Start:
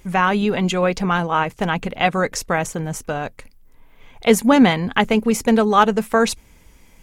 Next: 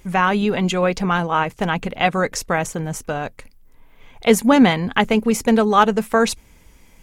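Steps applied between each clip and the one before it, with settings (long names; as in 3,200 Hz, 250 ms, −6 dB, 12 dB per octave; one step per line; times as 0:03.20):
no processing that can be heard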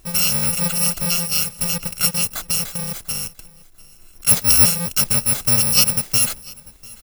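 samples in bit-reversed order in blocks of 128 samples
repeating echo 695 ms, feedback 26%, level −23 dB
level −1 dB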